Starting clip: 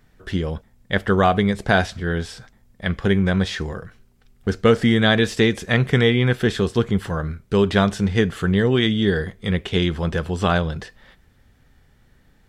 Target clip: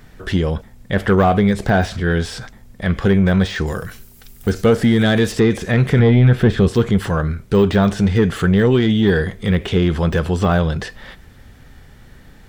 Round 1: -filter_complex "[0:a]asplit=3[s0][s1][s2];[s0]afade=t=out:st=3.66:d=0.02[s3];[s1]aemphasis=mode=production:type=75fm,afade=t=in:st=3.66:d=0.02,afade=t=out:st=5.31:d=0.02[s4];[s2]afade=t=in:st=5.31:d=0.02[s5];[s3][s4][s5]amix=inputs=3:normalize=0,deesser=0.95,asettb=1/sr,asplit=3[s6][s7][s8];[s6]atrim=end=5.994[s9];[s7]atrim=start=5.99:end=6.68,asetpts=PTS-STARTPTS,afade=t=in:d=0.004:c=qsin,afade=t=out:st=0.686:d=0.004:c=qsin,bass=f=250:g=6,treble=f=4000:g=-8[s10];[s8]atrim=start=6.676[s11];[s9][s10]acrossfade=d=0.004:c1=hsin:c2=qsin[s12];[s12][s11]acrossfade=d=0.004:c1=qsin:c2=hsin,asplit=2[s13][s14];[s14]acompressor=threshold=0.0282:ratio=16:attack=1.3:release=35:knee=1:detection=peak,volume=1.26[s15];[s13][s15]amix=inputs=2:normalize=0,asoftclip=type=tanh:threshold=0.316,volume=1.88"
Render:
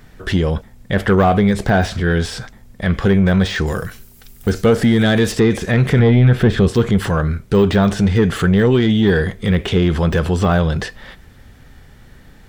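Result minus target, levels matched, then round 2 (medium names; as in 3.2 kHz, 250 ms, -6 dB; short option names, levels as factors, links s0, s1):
compression: peak gain reduction -9.5 dB
-filter_complex "[0:a]asplit=3[s0][s1][s2];[s0]afade=t=out:st=3.66:d=0.02[s3];[s1]aemphasis=mode=production:type=75fm,afade=t=in:st=3.66:d=0.02,afade=t=out:st=5.31:d=0.02[s4];[s2]afade=t=in:st=5.31:d=0.02[s5];[s3][s4][s5]amix=inputs=3:normalize=0,deesser=0.95,asettb=1/sr,asplit=3[s6][s7][s8];[s6]atrim=end=5.994[s9];[s7]atrim=start=5.99:end=6.68,asetpts=PTS-STARTPTS,afade=t=in:d=0.004:c=qsin,afade=t=out:st=0.686:d=0.004:c=qsin,bass=f=250:g=6,treble=f=4000:g=-8[s10];[s8]atrim=start=6.676[s11];[s9][s10]acrossfade=d=0.004:c1=hsin:c2=qsin[s12];[s12][s11]acrossfade=d=0.004:c1=qsin:c2=hsin,asplit=2[s13][s14];[s14]acompressor=threshold=0.00891:ratio=16:attack=1.3:release=35:knee=1:detection=peak,volume=1.26[s15];[s13][s15]amix=inputs=2:normalize=0,asoftclip=type=tanh:threshold=0.316,volume=1.88"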